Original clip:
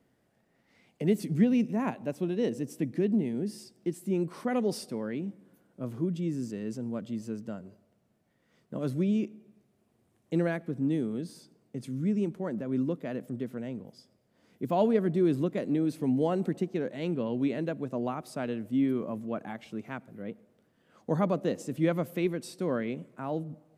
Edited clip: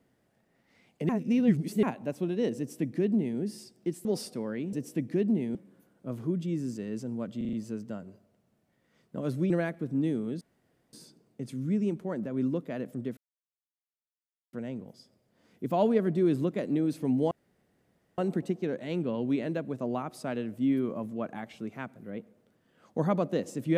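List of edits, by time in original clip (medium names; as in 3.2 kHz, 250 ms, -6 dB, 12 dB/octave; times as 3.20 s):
1.09–1.83 s: reverse
2.57–3.39 s: copy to 5.29 s
4.05–4.61 s: delete
7.11 s: stutter 0.04 s, 5 plays
9.08–10.37 s: delete
11.28 s: insert room tone 0.52 s
13.52 s: insert silence 1.36 s
16.30 s: insert room tone 0.87 s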